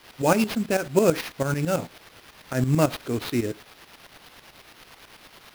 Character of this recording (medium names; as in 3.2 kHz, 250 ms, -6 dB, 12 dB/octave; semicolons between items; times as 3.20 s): a quantiser's noise floor 8-bit, dither triangular; tremolo saw up 9.1 Hz, depth 70%; aliases and images of a low sample rate 7.7 kHz, jitter 20%